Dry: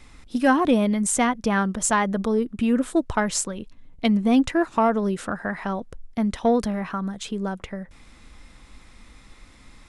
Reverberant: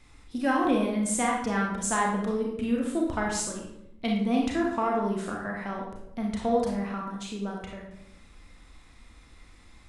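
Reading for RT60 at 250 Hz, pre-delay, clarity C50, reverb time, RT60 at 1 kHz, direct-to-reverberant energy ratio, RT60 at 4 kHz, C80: 1.0 s, 29 ms, 2.5 dB, 0.80 s, 0.75 s, −1.5 dB, 0.55 s, 6.0 dB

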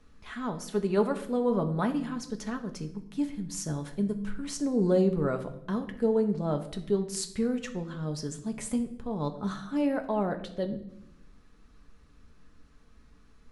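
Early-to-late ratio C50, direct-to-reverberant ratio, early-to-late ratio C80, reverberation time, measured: 12.5 dB, 5.0 dB, 15.0 dB, 0.75 s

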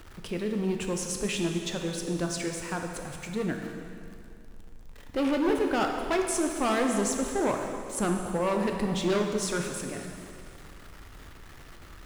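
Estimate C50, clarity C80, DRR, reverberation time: 4.0 dB, 5.0 dB, 2.5 dB, 2.4 s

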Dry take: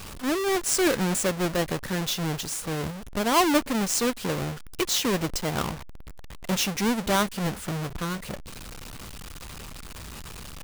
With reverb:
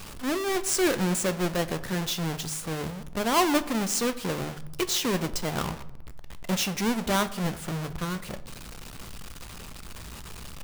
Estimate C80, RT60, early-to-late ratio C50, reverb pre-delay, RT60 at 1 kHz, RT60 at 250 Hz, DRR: 18.0 dB, 0.85 s, 15.5 dB, 4 ms, 0.80 s, 1.2 s, 12.0 dB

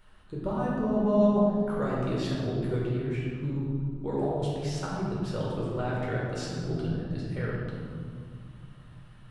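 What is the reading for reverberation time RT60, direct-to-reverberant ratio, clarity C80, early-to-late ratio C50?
2.2 s, −6.0 dB, 0.5 dB, −1.5 dB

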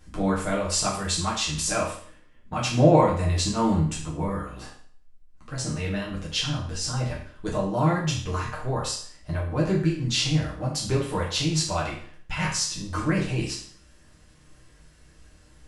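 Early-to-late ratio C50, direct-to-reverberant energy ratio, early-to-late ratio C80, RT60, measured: 5.0 dB, −5.5 dB, 9.0 dB, 0.50 s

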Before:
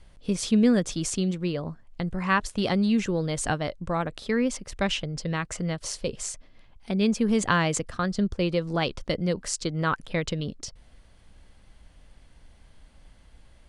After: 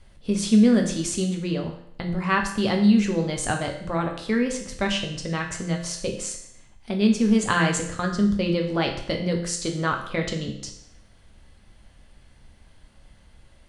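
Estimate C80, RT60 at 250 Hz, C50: 10.5 dB, 0.70 s, 8.0 dB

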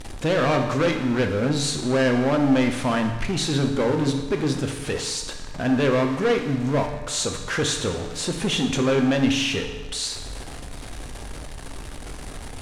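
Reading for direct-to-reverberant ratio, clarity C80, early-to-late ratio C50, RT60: 4.0 dB, 9.0 dB, 7.0 dB, 1.2 s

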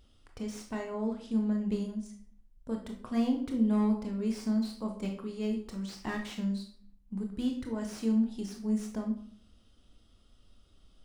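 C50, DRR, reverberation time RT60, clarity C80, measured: 7.5 dB, 2.0 dB, 0.55 s, 11.5 dB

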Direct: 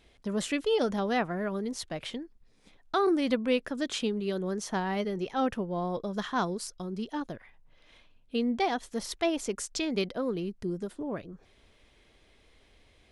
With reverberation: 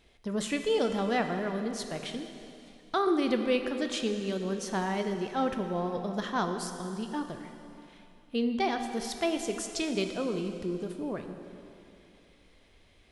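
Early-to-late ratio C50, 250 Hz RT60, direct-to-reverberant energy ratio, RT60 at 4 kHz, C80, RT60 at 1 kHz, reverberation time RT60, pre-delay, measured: 7.0 dB, 3.0 s, 5.5 dB, 2.7 s, 7.5 dB, 2.9 s, 2.9 s, 6 ms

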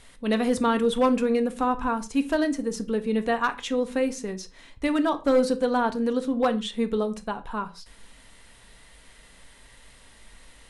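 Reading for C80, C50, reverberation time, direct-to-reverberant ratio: 22.0 dB, 17.0 dB, non-exponential decay, 7.5 dB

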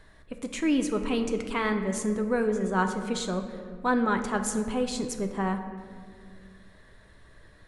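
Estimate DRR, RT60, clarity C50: 5.5 dB, 2.0 s, 8.0 dB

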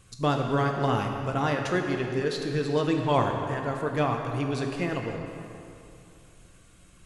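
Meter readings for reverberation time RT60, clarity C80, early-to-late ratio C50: 2.7 s, 4.5 dB, 3.5 dB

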